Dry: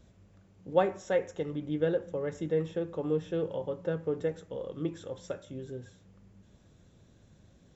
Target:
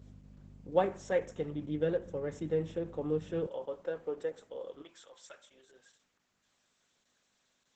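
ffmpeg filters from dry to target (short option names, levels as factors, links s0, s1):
-af "aeval=exprs='val(0)+0.00562*(sin(2*PI*50*n/s)+sin(2*PI*2*50*n/s)/2+sin(2*PI*3*50*n/s)/3+sin(2*PI*4*50*n/s)/4+sin(2*PI*5*50*n/s)/5)':c=same,asetnsamples=n=441:p=0,asendcmd='3.47 highpass f 390;4.82 highpass f 1100',highpass=72,volume=0.75" -ar 48000 -c:a libopus -b:a 10k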